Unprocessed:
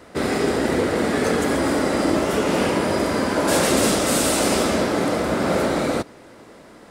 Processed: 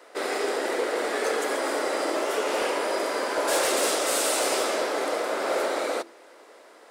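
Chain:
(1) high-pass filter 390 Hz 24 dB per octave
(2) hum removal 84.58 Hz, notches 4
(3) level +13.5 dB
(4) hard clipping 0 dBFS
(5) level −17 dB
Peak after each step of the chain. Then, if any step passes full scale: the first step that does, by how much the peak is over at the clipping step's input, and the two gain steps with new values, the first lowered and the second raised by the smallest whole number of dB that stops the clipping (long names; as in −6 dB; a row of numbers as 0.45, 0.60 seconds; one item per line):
−8.0, −7.5, +6.0, 0.0, −17.0 dBFS
step 3, 6.0 dB
step 3 +7.5 dB, step 5 −11 dB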